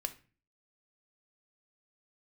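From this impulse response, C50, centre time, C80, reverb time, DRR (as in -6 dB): 15.0 dB, 5 ms, 20.5 dB, 0.35 s, 8.0 dB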